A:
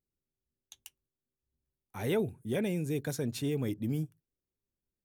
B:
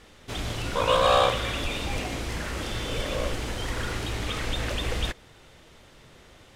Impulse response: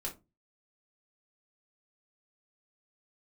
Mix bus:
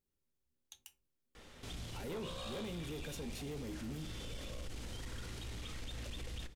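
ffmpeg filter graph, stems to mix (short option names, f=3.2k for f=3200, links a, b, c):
-filter_complex "[0:a]volume=-1.5dB,asplit=2[a][b];[b]volume=-5.5dB[c];[1:a]acrossover=split=280|3000[d][e][f];[e]acompressor=threshold=-55dB:ratio=1.5[g];[d][g][f]amix=inputs=3:normalize=0,adelay=1350,volume=-5.5dB,asplit=2[h][i];[i]volume=-12dB[j];[2:a]atrim=start_sample=2205[k];[c][j]amix=inputs=2:normalize=0[l];[l][k]afir=irnorm=-1:irlink=0[m];[a][h][m]amix=inputs=3:normalize=0,asoftclip=type=tanh:threshold=-26.5dB,alimiter=level_in=13.5dB:limit=-24dB:level=0:latency=1:release=124,volume=-13.5dB"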